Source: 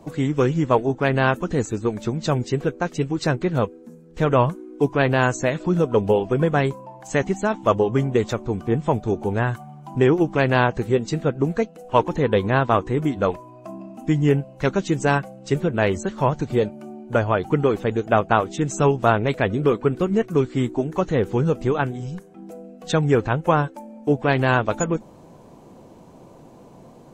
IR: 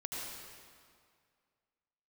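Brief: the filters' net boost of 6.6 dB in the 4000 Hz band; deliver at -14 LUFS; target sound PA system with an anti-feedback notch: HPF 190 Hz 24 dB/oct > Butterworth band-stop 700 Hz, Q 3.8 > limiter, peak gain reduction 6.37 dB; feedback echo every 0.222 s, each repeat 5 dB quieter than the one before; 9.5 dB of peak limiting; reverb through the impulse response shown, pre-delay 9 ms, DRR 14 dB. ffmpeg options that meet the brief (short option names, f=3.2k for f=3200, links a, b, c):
-filter_complex "[0:a]equalizer=f=4k:t=o:g=8.5,alimiter=limit=-10.5dB:level=0:latency=1,aecho=1:1:222|444|666|888|1110|1332|1554:0.562|0.315|0.176|0.0988|0.0553|0.031|0.0173,asplit=2[a][b];[1:a]atrim=start_sample=2205,adelay=9[c];[b][c]afir=irnorm=-1:irlink=0,volume=-15.5dB[d];[a][d]amix=inputs=2:normalize=0,highpass=f=190:w=0.5412,highpass=f=190:w=1.3066,asuperstop=centerf=700:order=8:qfactor=3.8,volume=11dB,alimiter=limit=-2.5dB:level=0:latency=1"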